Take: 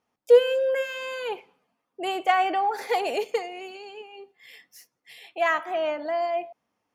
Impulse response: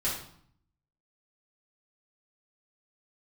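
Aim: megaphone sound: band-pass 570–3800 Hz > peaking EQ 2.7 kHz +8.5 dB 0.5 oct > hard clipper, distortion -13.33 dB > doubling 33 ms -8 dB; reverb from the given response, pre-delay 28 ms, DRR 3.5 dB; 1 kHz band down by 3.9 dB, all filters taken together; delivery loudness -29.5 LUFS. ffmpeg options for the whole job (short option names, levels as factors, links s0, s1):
-filter_complex "[0:a]equalizer=f=1000:t=o:g=-4.5,asplit=2[s0][s1];[1:a]atrim=start_sample=2205,adelay=28[s2];[s1][s2]afir=irnorm=-1:irlink=0,volume=0.299[s3];[s0][s3]amix=inputs=2:normalize=0,highpass=570,lowpass=3800,equalizer=f=2700:t=o:w=0.5:g=8.5,asoftclip=type=hard:threshold=0.106,asplit=2[s4][s5];[s5]adelay=33,volume=0.398[s6];[s4][s6]amix=inputs=2:normalize=0,volume=0.75"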